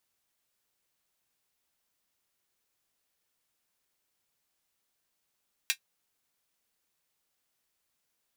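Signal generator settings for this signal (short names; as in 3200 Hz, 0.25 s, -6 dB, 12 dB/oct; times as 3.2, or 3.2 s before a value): closed hi-hat, high-pass 2200 Hz, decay 0.09 s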